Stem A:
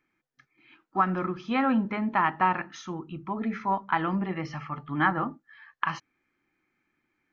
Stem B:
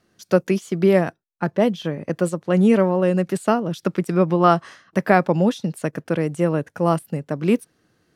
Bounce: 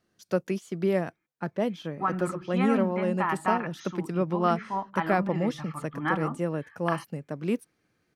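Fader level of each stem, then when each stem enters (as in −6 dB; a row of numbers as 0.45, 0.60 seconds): −4.0, −9.5 decibels; 1.05, 0.00 seconds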